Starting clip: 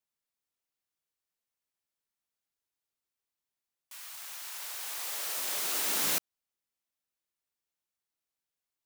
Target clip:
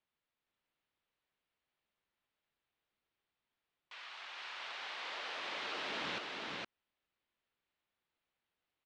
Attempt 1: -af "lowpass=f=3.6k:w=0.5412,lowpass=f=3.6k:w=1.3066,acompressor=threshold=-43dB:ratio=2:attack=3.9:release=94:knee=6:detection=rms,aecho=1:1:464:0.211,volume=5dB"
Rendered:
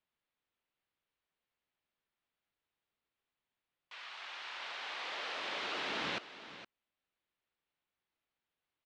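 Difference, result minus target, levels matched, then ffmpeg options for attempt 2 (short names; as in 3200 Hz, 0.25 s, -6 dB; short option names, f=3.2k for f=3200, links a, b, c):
echo-to-direct -11.5 dB; compressor: peak gain reduction -4 dB
-af "lowpass=f=3.6k:w=0.5412,lowpass=f=3.6k:w=1.3066,acompressor=threshold=-50.5dB:ratio=2:attack=3.9:release=94:knee=6:detection=rms,aecho=1:1:464:0.794,volume=5dB"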